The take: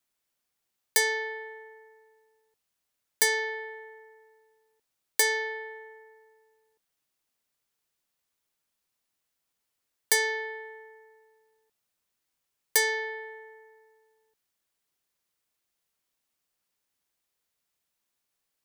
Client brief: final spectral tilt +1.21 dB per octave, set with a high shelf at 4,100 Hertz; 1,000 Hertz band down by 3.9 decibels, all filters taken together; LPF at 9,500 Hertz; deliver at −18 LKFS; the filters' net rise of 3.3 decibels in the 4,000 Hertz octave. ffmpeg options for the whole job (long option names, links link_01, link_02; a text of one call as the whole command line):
ffmpeg -i in.wav -af "lowpass=9500,equalizer=frequency=1000:width_type=o:gain=-4.5,equalizer=frequency=4000:width_type=o:gain=6.5,highshelf=frequency=4100:gain=-3,volume=10dB" out.wav